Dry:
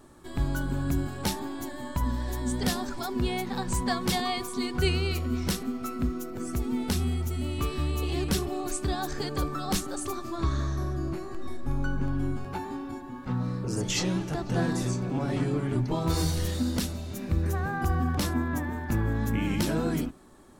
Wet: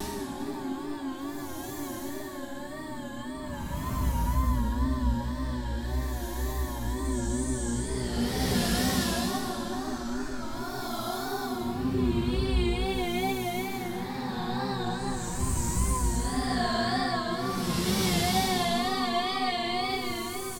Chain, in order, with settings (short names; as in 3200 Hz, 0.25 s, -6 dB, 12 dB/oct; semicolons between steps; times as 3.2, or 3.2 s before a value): Paulstretch 6.6×, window 0.25 s, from 1.36; feedback echo 0.395 s, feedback 46%, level -15 dB; wow and flutter 86 cents